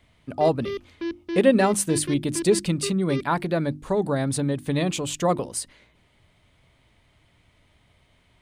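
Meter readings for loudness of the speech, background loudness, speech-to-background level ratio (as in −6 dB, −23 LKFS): −24.0 LKFS, −33.5 LKFS, 9.5 dB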